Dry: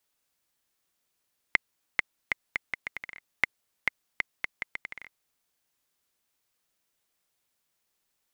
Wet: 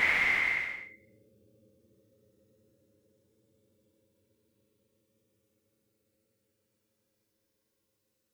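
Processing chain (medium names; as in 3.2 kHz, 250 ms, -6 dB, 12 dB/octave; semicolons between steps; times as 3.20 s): de-hum 106.8 Hz, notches 5; Paulstretch 36×, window 0.05 s, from 1.99 s; trim -3.5 dB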